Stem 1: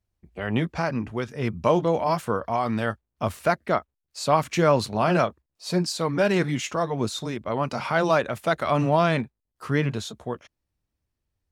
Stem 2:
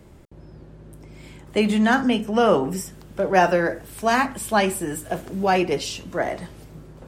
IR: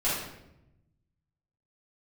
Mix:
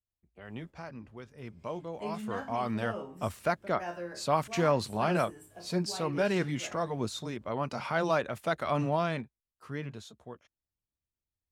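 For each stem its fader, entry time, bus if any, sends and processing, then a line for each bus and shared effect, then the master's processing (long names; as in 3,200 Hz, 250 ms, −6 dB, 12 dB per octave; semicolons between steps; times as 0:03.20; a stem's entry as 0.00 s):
0:01.98 −17.5 dB → 0:02.61 −7 dB → 0:08.79 −7 dB → 0:09.57 −14.5 dB, 0.00 s, no send, no processing
−5.0 dB, 0.45 s, no send, resonators tuned to a chord C#2 major, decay 0.32 s; automatic ducking −6 dB, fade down 1.60 s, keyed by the first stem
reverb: not used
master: no processing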